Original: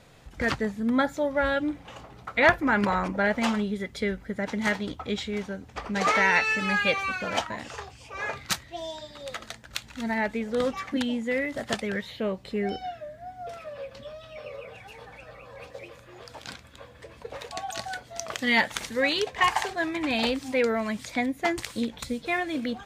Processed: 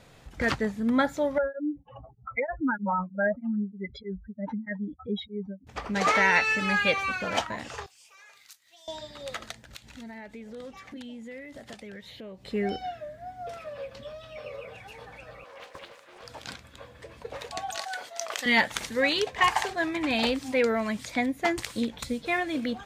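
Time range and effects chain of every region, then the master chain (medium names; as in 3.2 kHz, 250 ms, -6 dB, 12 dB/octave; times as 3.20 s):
1.38–5.67 s: spectral contrast enhancement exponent 3.3 + tremolo of two beating tones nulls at 3.2 Hz
7.86–8.88 s: differentiator + compression 4:1, threshold -51 dBFS
9.51–12.46 s: compression 3:1, threshold -43 dBFS + peaking EQ 1.2 kHz -4.5 dB 1 oct
15.44–16.23 s: high-pass 510 Hz + loudspeaker Doppler distortion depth 0.63 ms
17.76–18.46 s: high-pass 570 Hz + decay stretcher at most 110 dB/s
whole clip: none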